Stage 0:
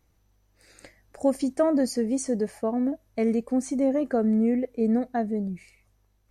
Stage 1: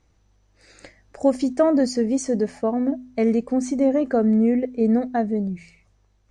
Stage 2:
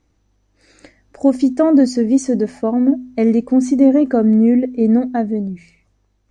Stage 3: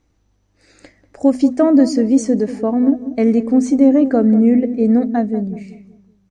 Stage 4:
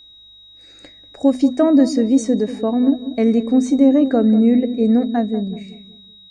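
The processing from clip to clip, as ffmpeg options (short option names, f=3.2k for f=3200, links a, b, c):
-af "lowpass=f=7.6k:w=0.5412,lowpass=f=7.6k:w=1.3066,bandreject=f=84.04:t=h:w=4,bandreject=f=168.08:t=h:w=4,bandreject=f=252.12:t=h:w=4,volume=4.5dB"
-af "equalizer=f=280:w=2.3:g=7.5,dynaudnorm=f=290:g=9:m=11.5dB,volume=-1dB"
-filter_complex "[0:a]asplit=2[a][b];[b]adelay=190,lowpass=f=800:p=1,volume=-11.5dB,asplit=2[c][d];[d]adelay=190,lowpass=f=800:p=1,volume=0.4,asplit=2[e][f];[f]adelay=190,lowpass=f=800:p=1,volume=0.4,asplit=2[g][h];[h]adelay=190,lowpass=f=800:p=1,volume=0.4[i];[a][c][e][g][i]amix=inputs=5:normalize=0"
-af "aeval=exprs='val(0)+0.00891*sin(2*PI*3800*n/s)':c=same,volume=-1.5dB"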